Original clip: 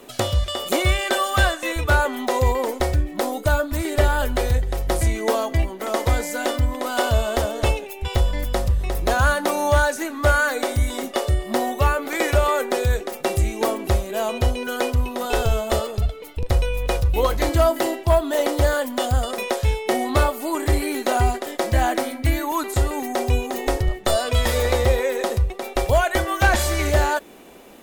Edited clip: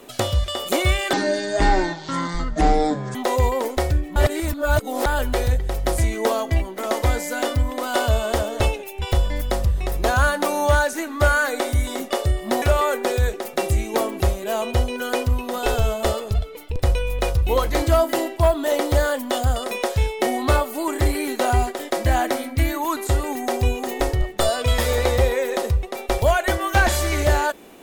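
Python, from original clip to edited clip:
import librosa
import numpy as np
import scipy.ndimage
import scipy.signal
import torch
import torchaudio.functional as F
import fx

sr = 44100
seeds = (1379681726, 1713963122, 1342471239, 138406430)

y = fx.edit(x, sr, fx.speed_span(start_s=1.13, length_s=1.05, speed=0.52),
    fx.reverse_span(start_s=3.19, length_s=0.9),
    fx.cut(start_s=11.65, length_s=0.64), tone=tone)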